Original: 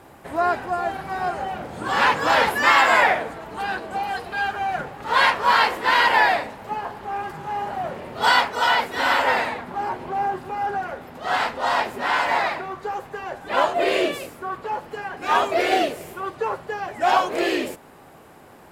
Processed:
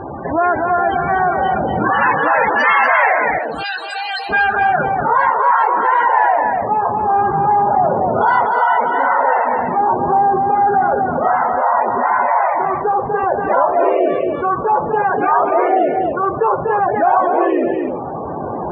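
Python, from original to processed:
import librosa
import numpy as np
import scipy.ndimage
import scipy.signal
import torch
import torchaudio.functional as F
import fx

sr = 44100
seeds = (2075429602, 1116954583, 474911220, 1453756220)

p1 = fx.recorder_agc(x, sr, target_db=-12.0, rise_db_per_s=8.3, max_gain_db=30)
p2 = fx.pre_emphasis(p1, sr, coefficient=0.97, at=(3.38, 4.29), fade=0.02)
p3 = np.clip(p2, -10.0 ** (-14.5 / 20.0), 10.0 ** (-14.5 / 20.0))
p4 = p2 + (p3 * librosa.db_to_amplitude(-10.0))
p5 = fx.spec_topn(p4, sr, count=32)
p6 = fx.filter_sweep_lowpass(p5, sr, from_hz=4800.0, to_hz=1100.0, start_s=4.03, end_s=4.87, q=1.2)
p7 = p6 + fx.echo_single(p6, sr, ms=242, db=-7.5, dry=0)
y = fx.env_flatten(p7, sr, amount_pct=50)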